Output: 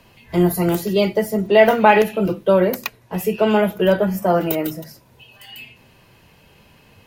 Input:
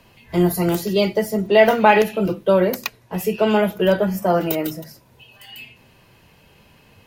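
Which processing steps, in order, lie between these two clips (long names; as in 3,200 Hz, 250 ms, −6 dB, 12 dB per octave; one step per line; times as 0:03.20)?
dynamic equaliser 5,100 Hz, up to −4 dB, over −42 dBFS, Q 1.1
level +1 dB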